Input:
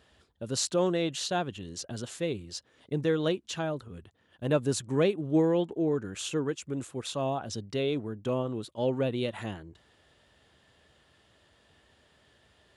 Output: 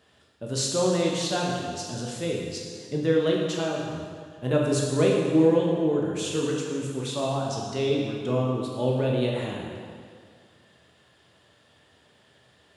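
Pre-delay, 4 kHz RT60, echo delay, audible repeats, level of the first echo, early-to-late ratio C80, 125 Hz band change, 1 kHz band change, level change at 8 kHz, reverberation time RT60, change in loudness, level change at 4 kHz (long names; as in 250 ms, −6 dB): 9 ms, 1.7 s, no echo audible, no echo audible, no echo audible, 2.5 dB, +5.5 dB, +4.0 dB, +4.0 dB, 2.0 s, +4.5 dB, +4.5 dB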